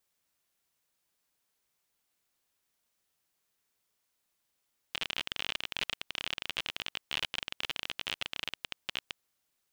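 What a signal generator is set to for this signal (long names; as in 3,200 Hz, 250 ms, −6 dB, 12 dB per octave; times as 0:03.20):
Geiger counter clicks 34 per second −16.5 dBFS 4.28 s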